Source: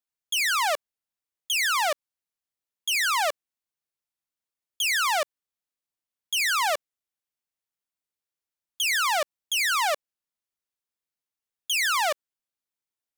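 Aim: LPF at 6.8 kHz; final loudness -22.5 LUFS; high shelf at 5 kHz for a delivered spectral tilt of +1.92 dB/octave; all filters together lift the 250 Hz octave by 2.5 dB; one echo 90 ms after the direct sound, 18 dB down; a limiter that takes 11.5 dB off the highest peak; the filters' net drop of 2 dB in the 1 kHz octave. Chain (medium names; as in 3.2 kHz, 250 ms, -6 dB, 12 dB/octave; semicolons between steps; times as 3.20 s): low-pass 6.8 kHz; peaking EQ 250 Hz +4 dB; peaking EQ 1 kHz -3 dB; treble shelf 5 kHz +3.5 dB; peak limiter -29 dBFS; delay 90 ms -18 dB; trim +13 dB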